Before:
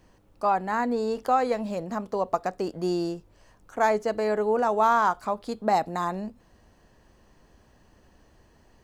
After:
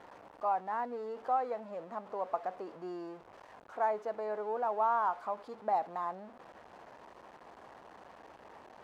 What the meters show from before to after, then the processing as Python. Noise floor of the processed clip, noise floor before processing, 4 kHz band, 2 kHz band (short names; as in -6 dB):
-57 dBFS, -60 dBFS, under -15 dB, -13.0 dB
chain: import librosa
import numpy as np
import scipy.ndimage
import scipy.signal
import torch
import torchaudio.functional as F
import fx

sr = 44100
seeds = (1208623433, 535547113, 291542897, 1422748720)

y = x + 0.5 * 10.0 ** (-32.5 / 20.0) * np.sign(x)
y = fx.bandpass_q(y, sr, hz=830.0, q=1.3)
y = y * librosa.db_to_amplitude(-8.0)